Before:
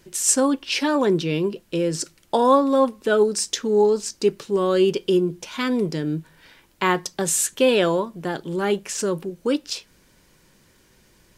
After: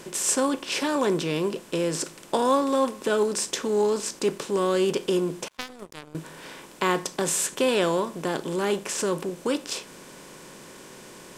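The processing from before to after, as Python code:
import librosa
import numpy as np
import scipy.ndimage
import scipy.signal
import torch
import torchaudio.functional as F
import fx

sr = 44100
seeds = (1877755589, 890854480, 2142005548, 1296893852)

y = fx.bin_compress(x, sr, power=0.6)
y = fx.power_curve(y, sr, exponent=3.0, at=(5.48, 6.15))
y = y * librosa.db_to_amplitude(-7.0)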